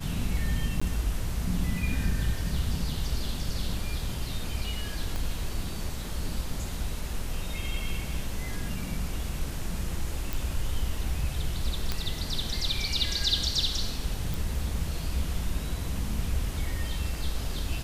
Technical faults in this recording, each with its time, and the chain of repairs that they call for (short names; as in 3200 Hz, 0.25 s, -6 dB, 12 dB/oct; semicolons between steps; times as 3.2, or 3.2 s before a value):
0.8–0.81 gap 15 ms
5.16 pop -19 dBFS
10.33 pop
11.92 pop -14 dBFS
14.34 pop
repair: de-click; interpolate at 0.8, 15 ms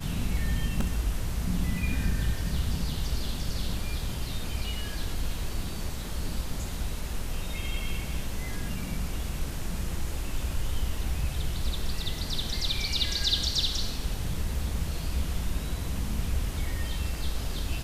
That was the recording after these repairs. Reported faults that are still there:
5.16 pop